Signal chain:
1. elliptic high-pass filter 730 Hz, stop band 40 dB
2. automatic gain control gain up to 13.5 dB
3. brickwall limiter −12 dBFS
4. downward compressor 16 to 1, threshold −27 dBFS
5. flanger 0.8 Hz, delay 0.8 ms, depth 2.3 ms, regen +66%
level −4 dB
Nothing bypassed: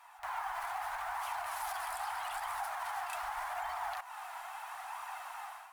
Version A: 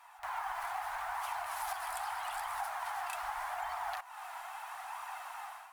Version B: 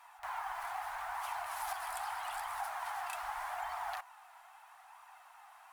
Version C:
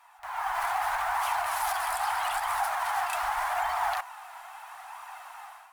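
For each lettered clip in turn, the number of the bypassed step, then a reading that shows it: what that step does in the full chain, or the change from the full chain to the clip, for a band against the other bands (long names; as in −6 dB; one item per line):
3, average gain reduction 1.5 dB
2, change in crest factor +5.5 dB
4, average gain reduction 6.0 dB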